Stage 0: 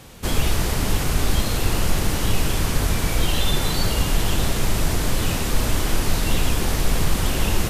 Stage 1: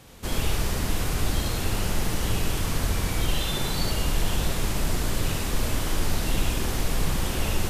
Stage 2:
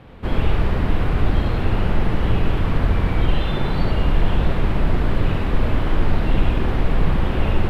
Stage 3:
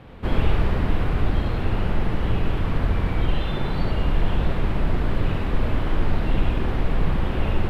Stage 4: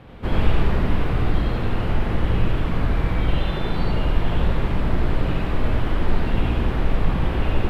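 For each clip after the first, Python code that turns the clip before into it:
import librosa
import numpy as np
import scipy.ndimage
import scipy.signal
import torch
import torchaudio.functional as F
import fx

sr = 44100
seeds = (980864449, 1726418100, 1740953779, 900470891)

y1 = x + 10.0 ** (-3.0 / 20.0) * np.pad(x, (int(73 * sr / 1000.0), 0))[:len(x)]
y1 = y1 * 10.0 ** (-6.5 / 20.0)
y2 = fx.air_absorb(y1, sr, metres=490.0)
y2 = y2 * 10.0 ** (8.0 / 20.0)
y3 = fx.rider(y2, sr, range_db=10, speed_s=2.0)
y3 = y3 * 10.0 ** (-3.5 / 20.0)
y4 = y3 + 10.0 ** (-3.5 / 20.0) * np.pad(y3, (int(90 * sr / 1000.0), 0))[:len(y3)]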